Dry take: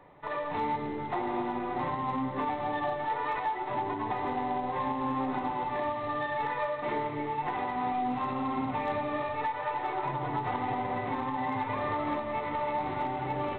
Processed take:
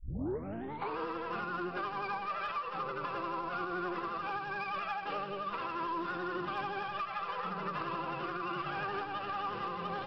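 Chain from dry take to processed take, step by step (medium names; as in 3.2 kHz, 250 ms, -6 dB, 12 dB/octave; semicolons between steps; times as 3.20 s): tape start-up on the opening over 1.33 s; vibrato 8.5 Hz 56 cents; speed mistake 33 rpm record played at 45 rpm; trim -5.5 dB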